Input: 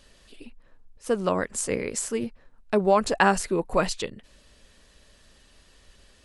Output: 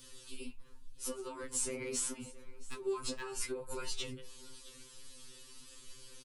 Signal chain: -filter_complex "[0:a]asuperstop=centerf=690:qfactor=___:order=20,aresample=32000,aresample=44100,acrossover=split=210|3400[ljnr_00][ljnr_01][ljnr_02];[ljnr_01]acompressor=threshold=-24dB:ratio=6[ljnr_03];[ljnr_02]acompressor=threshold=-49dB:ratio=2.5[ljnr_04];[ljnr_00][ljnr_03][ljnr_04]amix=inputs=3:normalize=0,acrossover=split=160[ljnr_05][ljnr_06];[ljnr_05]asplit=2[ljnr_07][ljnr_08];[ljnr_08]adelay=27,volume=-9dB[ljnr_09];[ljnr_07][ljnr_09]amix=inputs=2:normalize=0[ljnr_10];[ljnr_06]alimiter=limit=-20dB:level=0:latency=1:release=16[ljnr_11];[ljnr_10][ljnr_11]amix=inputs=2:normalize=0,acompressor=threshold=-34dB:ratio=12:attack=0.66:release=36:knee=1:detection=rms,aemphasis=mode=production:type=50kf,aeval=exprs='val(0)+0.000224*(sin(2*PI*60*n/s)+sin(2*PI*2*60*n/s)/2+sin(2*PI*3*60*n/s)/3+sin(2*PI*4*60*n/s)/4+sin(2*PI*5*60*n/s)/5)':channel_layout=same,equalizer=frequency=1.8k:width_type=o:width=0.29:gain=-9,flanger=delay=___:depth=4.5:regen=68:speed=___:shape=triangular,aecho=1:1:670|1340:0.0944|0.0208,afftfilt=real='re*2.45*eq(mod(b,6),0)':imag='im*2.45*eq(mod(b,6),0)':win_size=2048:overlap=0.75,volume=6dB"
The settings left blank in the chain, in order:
3.3, 9, 0.83